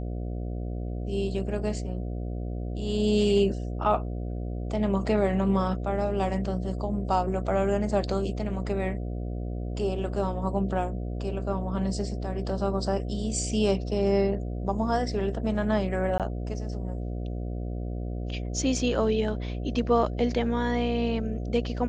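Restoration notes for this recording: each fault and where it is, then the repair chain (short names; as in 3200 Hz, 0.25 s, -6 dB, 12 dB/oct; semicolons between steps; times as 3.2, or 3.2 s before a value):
buzz 60 Hz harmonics 12 -32 dBFS
16.18–16.2 gap 17 ms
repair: de-hum 60 Hz, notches 12; interpolate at 16.18, 17 ms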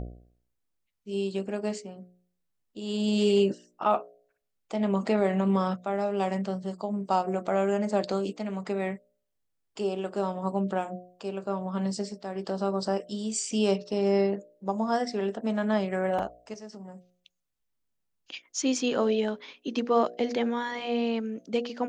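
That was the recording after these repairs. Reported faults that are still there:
none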